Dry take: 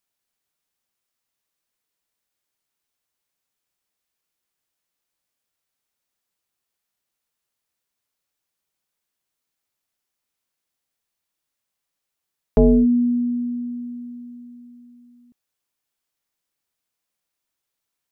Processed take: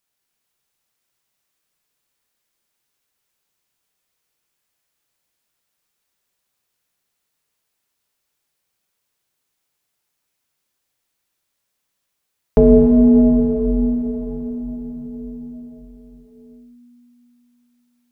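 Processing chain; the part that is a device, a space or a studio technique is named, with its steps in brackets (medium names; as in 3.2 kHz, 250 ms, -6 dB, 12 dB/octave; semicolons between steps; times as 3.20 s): cathedral (reverberation RT60 5.3 s, pre-delay 6 ms, DRR -1 dB); trim +3 dB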